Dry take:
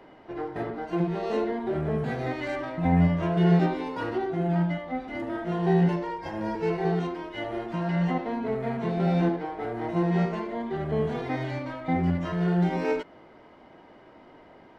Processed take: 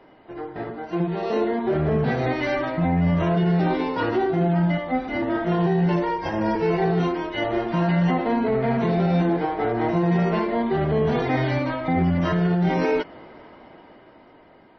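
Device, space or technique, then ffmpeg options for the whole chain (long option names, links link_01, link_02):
low-bitrate web radio: -filter_complex "[0:a]asplit=3[link_01][link_02][link_03];[link_01]afade=type=out:start_time=0.7:duration=0.02[link_04];[link_02]highpass=frequency=47:width=0.5412,highpass=frequency=47:width=1.3066,afade=type=in:start_time=0.7:duration=0.02,afade=type=out:start_time=2.24:duration=0.02[link_05];[link_03]afade=type=in:start_time=2.24:duration=0.02[link_06];[link_04][link_05][link_06]amix=inputs=3:normalize=0,dynaudnorm=framelen=260:gausssize=11:maxgain=10dB,alimiter=limit=-13.5dB:level=0:latency=1:release=11" -ar 24000 -c:a libmp3lame -b:a 24k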